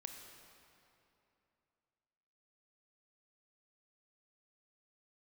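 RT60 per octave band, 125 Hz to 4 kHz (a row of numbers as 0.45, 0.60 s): 3.1, 3.0, 3.0, 2.8, 2.5, 2.1 s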